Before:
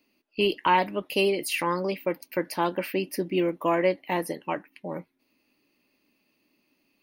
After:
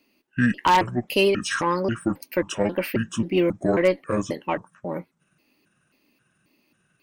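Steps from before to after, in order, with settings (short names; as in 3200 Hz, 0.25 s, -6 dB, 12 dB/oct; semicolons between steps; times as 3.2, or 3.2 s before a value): trilling pitch shifter -9 st, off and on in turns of 0.269 s; added harmonics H 2 -15 dB, 4 -19 dB, 5 -33 dB, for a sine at -8 dBFS; wavefolder -12 dBFS; gain +3.5 dB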